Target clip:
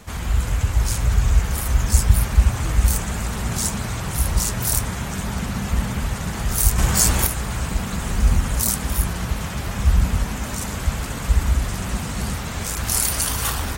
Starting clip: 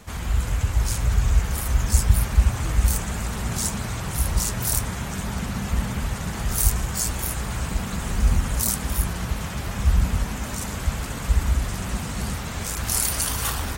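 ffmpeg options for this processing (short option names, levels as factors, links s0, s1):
-filter_complex "[0:a]asettb=1/sr,asplit=3[s0][s1][s2];[s0]atrim=end=6.784[s3];[s1]atrim=start=6.78:end=7.27,asetpts=PTS-STARTPTS,afade=t=in:d=0.004:c=qsin,afade=t=out:st=0.486:d=0.004:c=qsin,acontrast=61[s4];[s2]atrim=start=7.266[s5];[s3][s4]acrossfade=d=0.004:c1=hsin:c2=qsin[s6];[s6][s5]acrossfade=d=0.004:c1=qsin:c2=hsin,volume=1.33"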